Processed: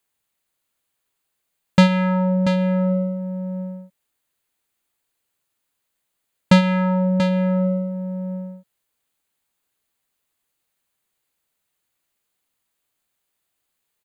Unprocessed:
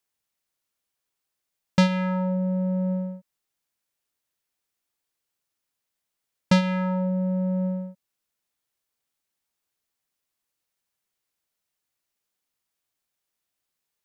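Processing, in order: peaking EQ 5.5 kHz -10.5 dB 0.24 oct; on a send: delay 685 ms -8.5 dB; on the sum: trim +6 dB

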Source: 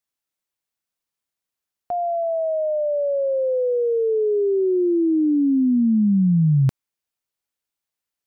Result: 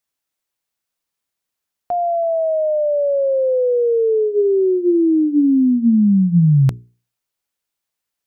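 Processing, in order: hum notches 60/120/180/240/300/360/420 Hz; trim +4.5 dB

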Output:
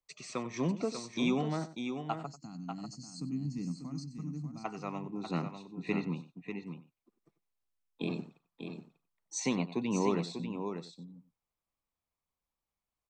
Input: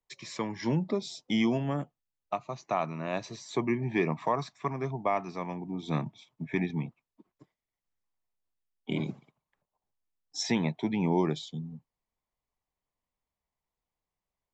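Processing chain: time-frequency box 2.51–5.16 s, 290–3700 Hz -25 dB; on a send: delay 658 ms -7.5 dB; on the sum: wide varispeed 1.11×; echo from a far wall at 16 m, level -15 dB; trim -3.5 dB

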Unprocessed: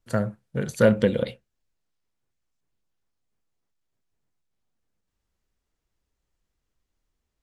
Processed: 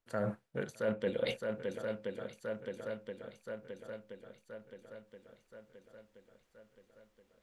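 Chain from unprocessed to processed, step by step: tone controls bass -11 dB, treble -6 dB; shuffle delay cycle 1025 ms, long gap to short 1.5:1, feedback 53%, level -22 dB; reverse; compression 6:1, threshold -42 dBFS, peak gain reduction 25.5 dB; reverse; trim +9 dB

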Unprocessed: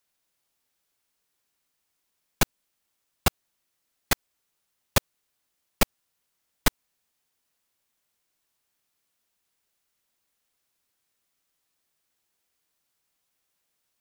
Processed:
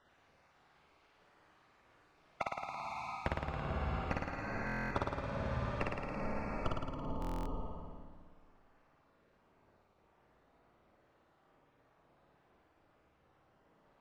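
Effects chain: random holes in the spectrogram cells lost 33%; reverberation RT60 1.7 s, pre-delay 6 ms, DRR 6.5 dB; compression 20:1, threshold -52 dBFS, peak gain reduction 37.5 dB; low-pass 1.7 kHz 12 dB/octave, from 6.67 s 1 kHz; flutter echo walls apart 9.5 m, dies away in 1.4 s; buffer glitch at 4.65/7.20 s, samples 1024, times 10; trim +18 dB

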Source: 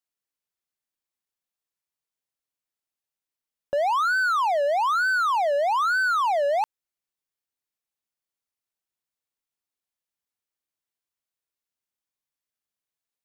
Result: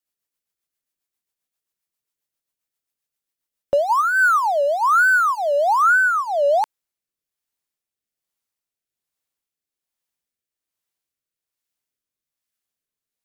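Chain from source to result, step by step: treble shelf 9 kHz +6.5 dB, from 3.79 s +11.5 dB, from 5.82 s +4 dB; waveshaping leveller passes 1; rotary cabinet horn 7.5 Hz, later 1.2 Hz, at 3.42 s; trim +7 dB

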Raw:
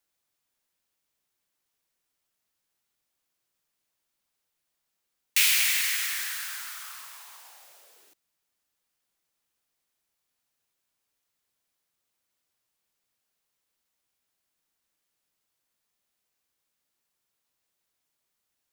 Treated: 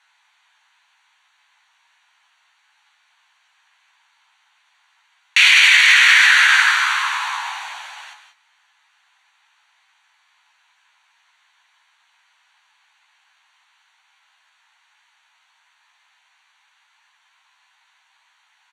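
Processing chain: Butterworth band-stop 5.1 kHz, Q 5.8; peaking EQ 1.2 kHz -7 dB 0.3 oct; doubling 14 ms -5.5 dB; gated-style reverb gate 210 ms rising, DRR 7.5 dB; in parallel at +2 dB: compressor with a negative ratio -29 dBFS, ratio -1; on the sum: steep high-pass 870 Hz 48 dB/octave; tape spacing loss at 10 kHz 32 dB; loudness maximiser +25 dB; trim -1 dB

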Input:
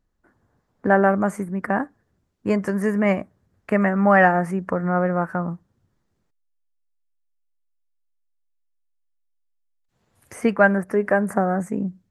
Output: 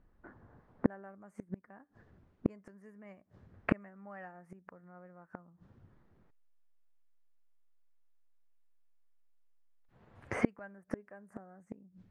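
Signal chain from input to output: level-controlled noise filter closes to 2 kHz, open at -17 dBFS; inverted gate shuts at -19 dBFS, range -40 dB; trim +6.5 dB

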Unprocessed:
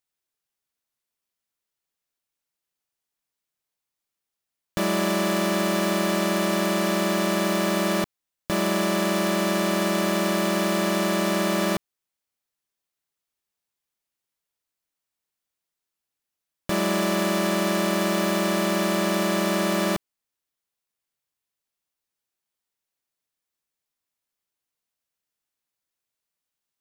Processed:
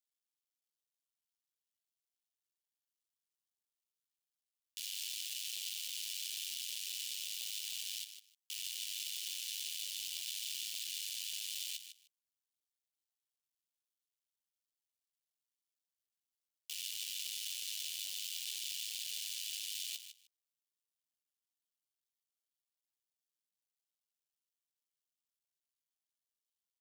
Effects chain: cycle switcher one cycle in 2, muted; elliptic high-pass 2.9 kHz, stop band 70 dB; on a send: feedback delay 153 ms, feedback 16%, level -10 dB; on the sum: trim -5.5 dB

